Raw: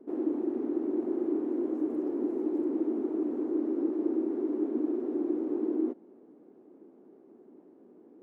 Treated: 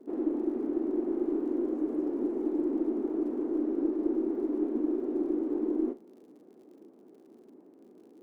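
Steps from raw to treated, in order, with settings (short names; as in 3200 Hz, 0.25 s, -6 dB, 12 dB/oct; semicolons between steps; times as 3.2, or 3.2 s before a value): tracing distortion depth 0.035 ms; crackle 64/s -55 dBFS; on a send: flutter echo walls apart 6.8 m, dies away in 0.2 s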